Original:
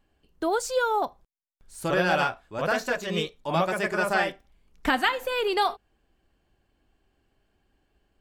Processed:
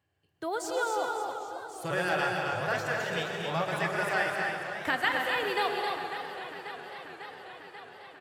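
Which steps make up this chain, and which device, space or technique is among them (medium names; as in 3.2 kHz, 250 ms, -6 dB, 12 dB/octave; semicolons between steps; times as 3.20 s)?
stadium PA (high-pass 130 Hz 24 dB/octave; peaking EQ 1.9 kHz +5.5 dB 0.31 oct; loudspeakers at several distances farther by 75 m -10 dB, 91 m -5 dB; reverberation RT60 1.8 s, pre-delay 109 ms, DRR 6 dB); high-pass 83 Hz; resonant low shelf 140 Hz +14 dB, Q 3; modulated delay 543 ms, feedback 72%, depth 151 cents, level -12 dB; trim -6.5 dB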